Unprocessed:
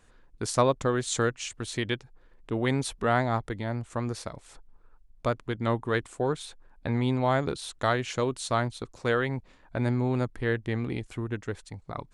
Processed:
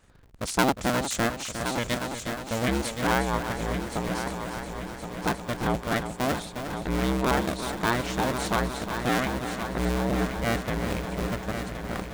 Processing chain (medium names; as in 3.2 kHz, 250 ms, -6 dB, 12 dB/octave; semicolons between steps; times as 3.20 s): cycle switcher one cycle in 2, inverted; multi-head delay 357 ms, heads first and third, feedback 67%, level -9.5 dB